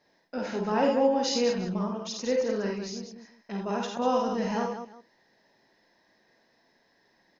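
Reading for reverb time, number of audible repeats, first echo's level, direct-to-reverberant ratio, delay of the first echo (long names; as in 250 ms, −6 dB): no reverb audible, 4, −3.0 dB, no reverb audible, 50 ms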